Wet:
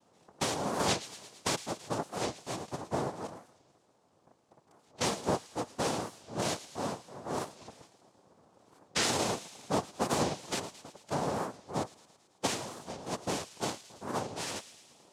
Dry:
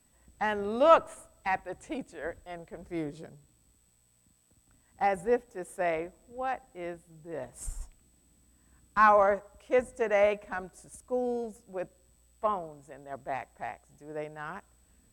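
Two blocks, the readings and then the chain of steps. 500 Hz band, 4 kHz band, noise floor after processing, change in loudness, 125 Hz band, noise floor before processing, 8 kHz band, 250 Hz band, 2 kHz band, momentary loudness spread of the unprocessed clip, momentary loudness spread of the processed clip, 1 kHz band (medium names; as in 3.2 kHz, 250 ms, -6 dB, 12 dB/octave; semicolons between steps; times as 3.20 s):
-7.0 dB, no reading, -68 dBFS, -4.5 dB, +8.0 dB, -67 dBFS, +13.0 dB, +1.5 dB, -5.5 dB, 20 LU, 12 LU, -6.5 dB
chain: level-controlled noise filter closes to 1.3 kHz, open at -23.5 dBFS; compression 4:1, threshold -38 dBFS, peak gain reduction 19.5 dB; noise-vocoded speech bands 2; on a send: feedback echo behind a high-pass 110 ms, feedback 66%, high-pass 2.4 kHz, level -13 dB; on the sum: warped record 45 rpm, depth 250 cents; trim +7 dB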